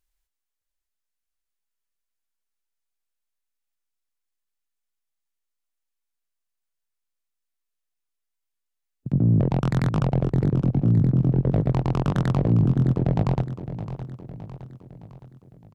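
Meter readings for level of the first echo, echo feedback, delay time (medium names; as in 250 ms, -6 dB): -12.0 dB, 51%, 614 ms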